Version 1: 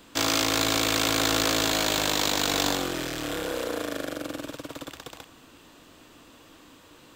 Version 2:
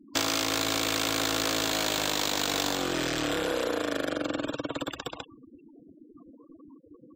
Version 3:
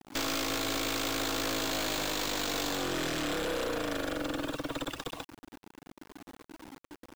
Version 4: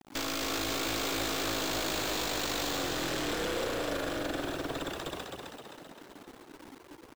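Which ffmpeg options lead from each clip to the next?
-af "afftfilt=real='re*gte(hypot(re,im),0.00891)':imag='im*gte(hypot(re,im),0.00891)':win_size=1024:overlap=0.75,lowshelf=f=79:g=-6,acompressor=threshold=0.0282:ratio=6,volume=2"
-af "acrusher=bits=7:mix=0:aa=0.000001,aeval=exprs='(tanh(31.6*val(0)+0.35)-tanh(0.35))/31.6':c=same,volume=1.19"
-filter_complex "[0:a]asplit=9[s0][s1][s2][s3][s4][s5][s6][s7][s8];[s1]adelay=261,afreqshift=58,volume=0.596[s9];[s2]adelay=522,afreqshift=116,volume=0.339[s10];[s3]adelay=783,afreqshift=174,volume=0.193[s11];[s4]adelay=1044,afreqshift=232,volume=0.111[s12];[s5]adelay=1305,afreqshift=290,volume=0.0631[s13];[s6]adelay=1566,afreqshift=348,volume=0.0359[s14];[s7]adelay=1827,afreqshift=406,volume=0.0204[s15];[s8]adelay=2088,afreqshift=464,volume=0.0116[s16];[s0][s9][s10][s11][s12][s13][s14][s15][s16]amix=inputs=9:normalize=0,volume=0.794"

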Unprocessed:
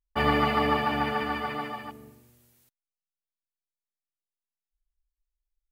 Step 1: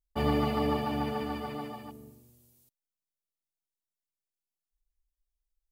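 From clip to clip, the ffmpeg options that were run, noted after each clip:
-af "equalizer=f=1700:t=o:w=1.9:g=-13.5"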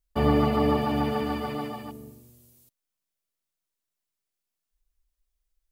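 -filter_complex "[0:a]bandreject=f=820:w=12,acrossover=split=1800[s0][s1];[s1]alimiter=level_in=7.08:limit=0.0631:level=0:latency=1,volume=0.141[s2];[s0][s2]amix=inputs=2:normalize=0,volume=2"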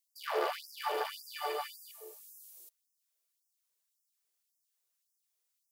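-af "bass=f=250:g=11,treble=f=4000:g=6,asoftclip=type=tanh:threshold=0.0944,afftfilt=real='re*gte(b*sr/1024,320*pow(5000/320,0.5+0.5*sin(2*PI*1.8*pts/sr)))':imag='im*gte(b*sr/1024,320*pow(5000/320,0.5+0.5*sin(2*PI*1.8*pts/sr)))':win_size=1024:overlap=0.75"

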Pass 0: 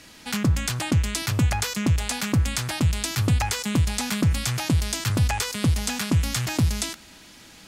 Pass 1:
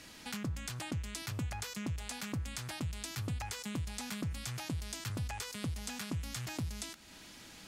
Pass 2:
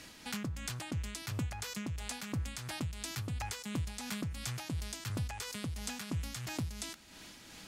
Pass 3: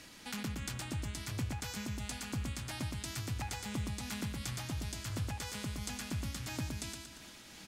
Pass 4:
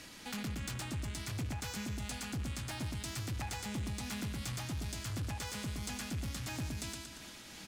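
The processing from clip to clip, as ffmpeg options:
-af "acompressor=threshold=0.01:ratio=2,volume=0.562"
-af "tremolo=f=2.9:d=0.37,volume=1.26"
-af "aecho=1:1:116|232|348|464|580|696:0.631|0.303|0.145|0.0698|0.0335|0.0161,volume=0.794"
-af "asoftclip=type=tanh:threshold=0.0168,volume=1.33"

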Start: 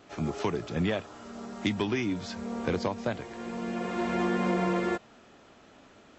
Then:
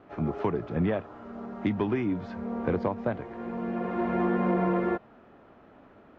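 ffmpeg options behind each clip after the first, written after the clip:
-af "lowpass=1500,volume=1.26"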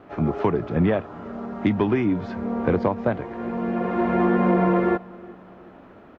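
-filter_complex "[0:a]asplit=2[s0][s1];[s1]adelay=372,lowpass=f=2000:p=1,volume=0.0668,asplit=2[s2][s3];[s3]adelay=372,lowpass=f=2000:p=1,volume=0.52,asplit=2[s4][s5];[s5]adelay=372,lowpass=f=2000:p=1,volume=0.52[s6];[s0][s2][s4][s6]amix=inputs=4:normalize=0,volume=2.11"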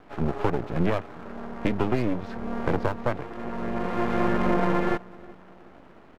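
-af "aeval=exprs='max(val(0),0)':c=same"

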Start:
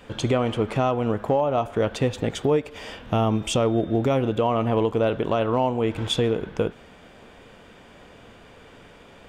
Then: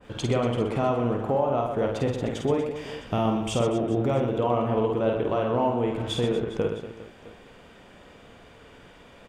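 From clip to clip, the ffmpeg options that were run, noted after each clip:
-af "aecho=1:1:50|125|237.5|406.2|659.4:0.631|0.398|0.251|0.158|0.1,adynamicequalizer=threshold=0.0158:dfrequency=1800:dqfactor=0.7:tfrequency=1800:tqfactor=0.7:attack=5:release=100:ratio=0.375:range=2.5:mode=cutabove:tftype=highshelf,volume=0.631"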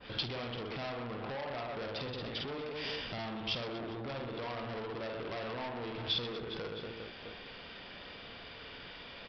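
-af "acompressor=threshold=0.0316:ratio=6,aresample=11025,asoftclip=type=tanh:threshold=0.0168,aresample=44100,crystalizer=i=7.5:c=0,volume=0.708"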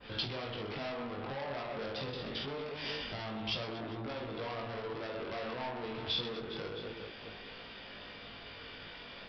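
-af "flanger=delay=18.5:depth=3.9:speed=0.25,volume=1.41"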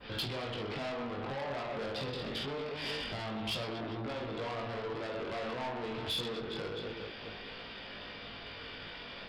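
-af "asoftclip=type=tanh:threshold=0.0224,volume=1.41"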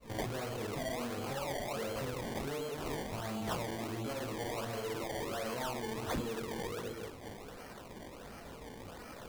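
-af "afftdn=nr=14:nf=-46,areverse,acompressor=mode=upward:threshold=0.00501:ratio=2.5,areverse,acrusher=samples=23:mix=1:aa=0.000001:lfo=1:lforange=23:lforate=1.4"

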